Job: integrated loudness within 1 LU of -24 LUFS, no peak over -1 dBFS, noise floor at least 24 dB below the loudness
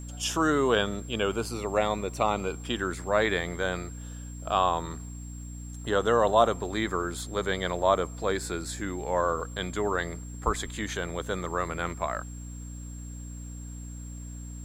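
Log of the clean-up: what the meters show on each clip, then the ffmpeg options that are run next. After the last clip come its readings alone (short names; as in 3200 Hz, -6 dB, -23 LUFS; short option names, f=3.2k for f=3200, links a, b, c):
hum 60 Hz; harmonics up to 300 Hz; hum level -37 dBFS; steady tone 7500 Hz; tone level -48 dBFS; loudness -28.5 LUFS; peak -6.5 dBFS; loudness target -24.0 LUFS
-> -af "bandreject=f=60:t=h:w=4,bandreject=f=120:t=h:w=4,bandreject=f=180:t=h:w=4,bandreject=f=240:t=h:w=4,bandreject=f=300:t=h:w=4"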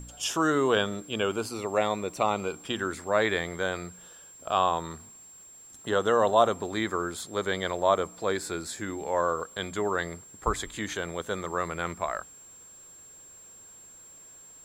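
hum none; steady tone 7500 Hz; tone level -48 dBFS
-> -af "bandreject=f=7.5k:w=30"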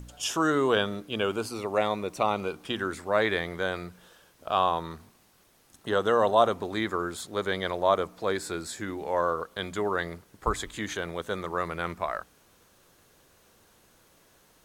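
steady tone none; loudness -28.5 LUFS; peak -6.5 dBFS; loudness target -24.0 LUFS
-> -af "volume=4.5dB"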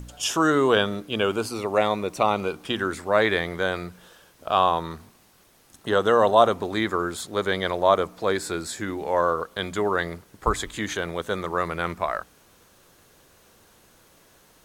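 loudness -24.0 LUFS; peak -2.0 dBFS; noise floor -57 dBFS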